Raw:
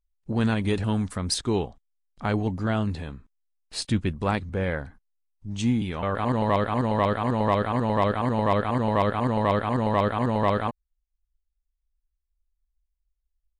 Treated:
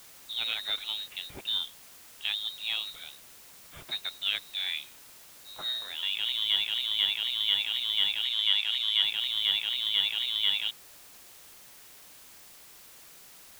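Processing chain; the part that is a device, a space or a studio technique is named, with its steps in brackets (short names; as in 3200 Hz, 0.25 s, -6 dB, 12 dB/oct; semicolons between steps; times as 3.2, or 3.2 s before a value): scrambled radio voice (BPF 340–3000 Hz; inverted band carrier 4000 Hz; white noise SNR 19 dB); 8.24–9.04 weighting filter A; gain -3 dB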